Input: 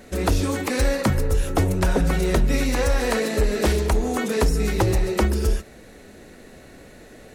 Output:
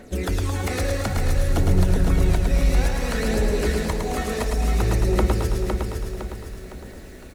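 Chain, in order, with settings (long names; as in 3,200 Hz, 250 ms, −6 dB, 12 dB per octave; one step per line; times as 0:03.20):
downward compressor, threshold −21 dBFS, peak gain reduction 6.5 dB
phase shifter 0.58 Hz, delay 1.8 ms, feedback 51%
on a send: repeating echo 509 ms, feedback 43%, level −5 dB
on the sum: feedback echo at a low word length 109 ms, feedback 55%, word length 8 bits, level −4 dB
level −3.5 dB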